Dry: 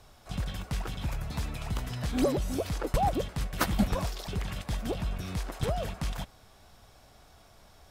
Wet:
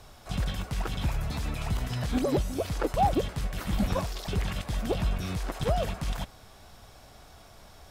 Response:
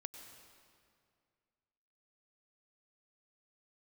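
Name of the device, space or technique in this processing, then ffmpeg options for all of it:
de-esser from a sidechain: -filter_complex "[0:a]asplit=2[a][b];[b]highpass=f=6.9k:w=0.5412,highpass=f=6.9k:w=1.3066,apad=whole_len=348828[c];[a][c]sidechaincompress=threshold=-53dB:ratio=8:attack=3.1:release=21,volume=5dB"

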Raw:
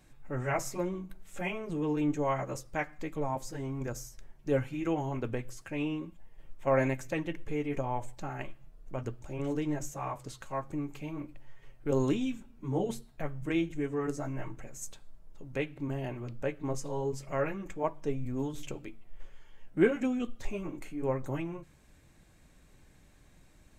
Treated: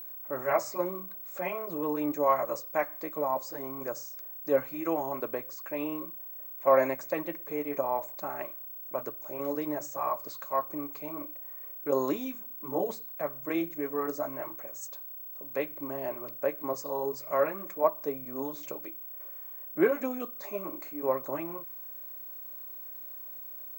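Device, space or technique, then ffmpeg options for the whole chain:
old television with a line whistle: -af "highpass=f=200:w=0.5412,highpass=f=200:w=1.3066,equalizer=f=230:t=q:w=4:g=-8,equalizer=f=600:t=q:w=4:g=9,equalizer=f=1.1k:t=q:w=4:g=9,equalizer=f=3k:t=q:w=4:g=-10,equalizer=f=4.5k:t=q:w=4:g=5,lowpass=f=7.8k:w=0.5412,lowpass=f=7.8k:w=1.3066,aeval=exprs='val(0)+0.01*sin(2*PI*15734*n/s)':c=same"

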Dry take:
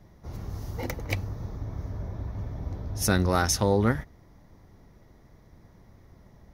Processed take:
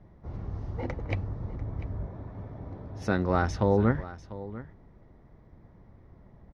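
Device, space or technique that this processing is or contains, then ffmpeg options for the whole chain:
phone in a pocket: -filter_complex "[0:a]asettb=1/sr,asplit=3[a][b][c];[a]atrim=end=2.064[d];[b]atrim=start=2.06:end=3.3,asetpts=PTS-STARTPTS,afade=t=in:d=0.004:c=qsin,afade=t=out:st=1.236:d=0.004:c=qsin,highpass=f=190:p=1[e];[c]atrim=start=3.296[f];[d][e]acrossfade=d=0.004:c1=hsin:c2=qsin[g];[g][f]acrossfade=d=0.004:c1=qsin:c2=hsin,lowpass=3.8k,highshelf=f=2.5k:g=-12,aecho=1:1:695:0.158"

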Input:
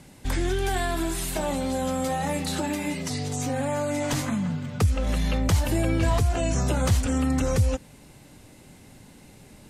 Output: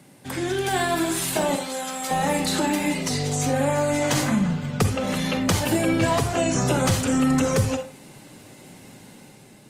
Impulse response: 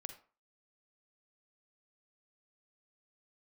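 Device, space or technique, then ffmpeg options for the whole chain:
far-field microphone of a smart speaker: -filter_complex "[0:a]asettb=1/sr,asplit=3[a][b][c];[a]atrim=end=1.554[d];[b]atrim=start=1.55:end=2.11,asetpts=PTS-STARTPTS,afade=t=in:d=0.004:c=qsin,afade=t=out:st=0.556:d=0.004:c=qsin,highpass=f=1.2k:p=1[e];[c]atrim=start=2.106[f];[d][e]acrossfade=d=0.004:c1=hsin:c2=qsin[g];[g][f]acrossfade=d=0.004:c1=qsin:c2=hsin,lowshelf=f=150:g=-3[h];[1:a]atrim=start_sample=2205[i];[h][i]afir=irnorm=-1:irlink=0,highpass=f=110:w=0.5412,highpass=f=110:w=1.3066,dynaudnorm=f=140:g=9:m=5dB,volume=5dB" -ar 48000 -c:a libopus -b:a 32k

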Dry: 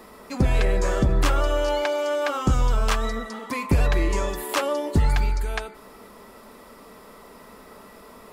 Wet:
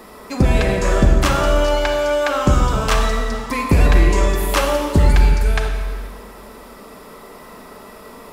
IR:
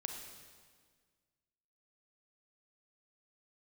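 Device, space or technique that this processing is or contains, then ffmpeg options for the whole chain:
stairwell: -filter_complex "[1:a]atrim=start_sample=2205[a];[0:a][a]afir=irnorm=-1:irlink=0,volume=8dB"

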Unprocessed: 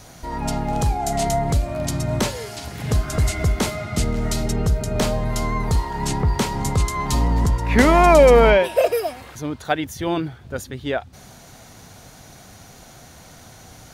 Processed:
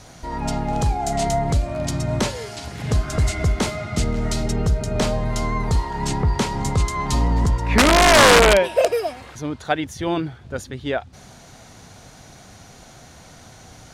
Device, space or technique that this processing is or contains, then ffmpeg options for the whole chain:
overflowing digital effects unit: -af "aeval=exprs='(mod(1.88*val(0)+1,2)-1)/1.88':c=same,lowpass=9k"

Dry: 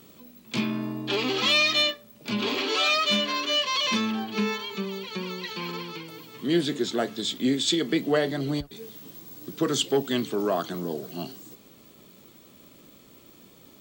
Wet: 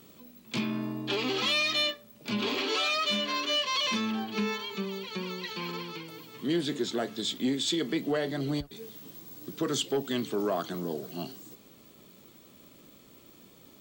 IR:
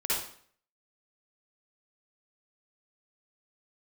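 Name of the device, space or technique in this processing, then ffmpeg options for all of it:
soft clipper into limiter: -af "asoftclip=type=tanh:threshold=-12.5dB,alimiter=limit=-18dB:level=0:latency=1:release=182,volume=-2.5dB"

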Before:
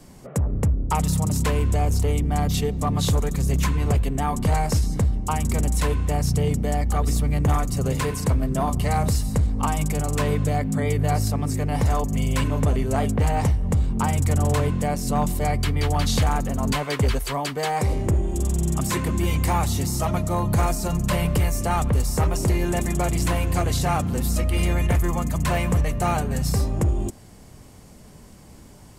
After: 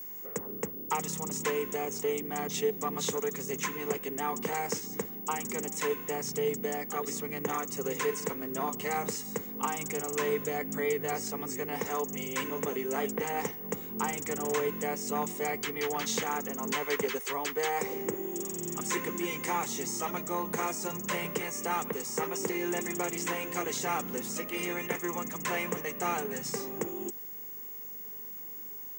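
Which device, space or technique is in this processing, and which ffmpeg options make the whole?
old television with a line whistle: -af "highpass=f=230:w=0.5412,highpass=f=230:w=1.3066,equalizer=f=270:t=q:w=4:g=-5,equalizer=f=440:t=q:w=4:g=6,equalizer=f=630:t=q:w=4:g=-10,equalizer=f=2k:t=q:w=4:g=5,equalizer=f=4.4k:t=q:w=4:g=-7,equalizer=f=6.5k:t=q:w=4:g=7,lowpass=f=8.4k:w=0.5412,lowpass=f=8.4k:w=1.3066,aeval=exprs='val(0)+0.02*sin(2*PI*15625*n/s)':c=same,volume=-5.5dB"

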